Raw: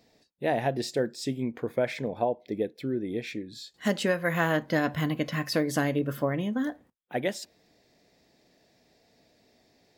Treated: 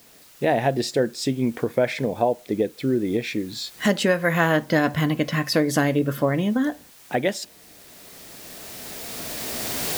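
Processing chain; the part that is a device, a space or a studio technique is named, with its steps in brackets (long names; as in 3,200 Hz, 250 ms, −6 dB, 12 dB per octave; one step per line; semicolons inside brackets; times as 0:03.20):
cheap recorder with automatic gain (white noise bed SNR 29 dB; camcorder AGC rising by 10 dB per second)
level +6 dB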